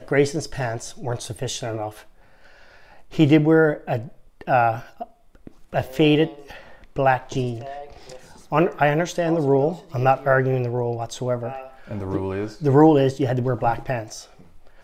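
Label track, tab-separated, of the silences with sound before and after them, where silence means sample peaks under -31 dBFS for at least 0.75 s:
1.970000	3.120000	silence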